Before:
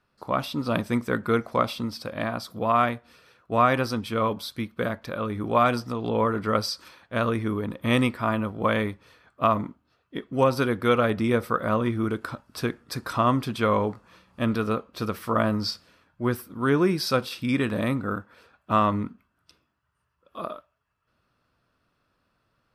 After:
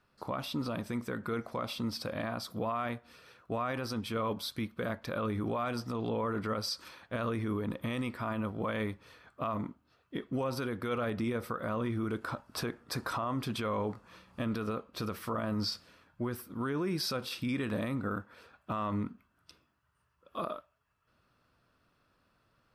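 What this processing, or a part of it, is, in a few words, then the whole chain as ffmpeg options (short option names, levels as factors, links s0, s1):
stacked limiters: -filter_complex "[0:a]asplit=3[s0][s1][s2];[s0]afade=t=out:st=12.24:d=0.02[s3];[s1]equalizer=f=780:t=o:w=1.7:g=5,afade=t=in:st=12.24:d=0.02,afade=t=out:st=13.35:d=0.02[s4];[s2]afade=t=in:st=13.35:d=0.02[s5];[s3][s4][s5]amix=inputs=3:normalize=0,alimiter=limit=0.224:level=0:latency=1:release=116,alimiter=limit=0.1:level=0:latency=1:release=476,alimiter=level_in=1.12:limit=0.0631:level=0:latency=1:release=28,volume=0.891"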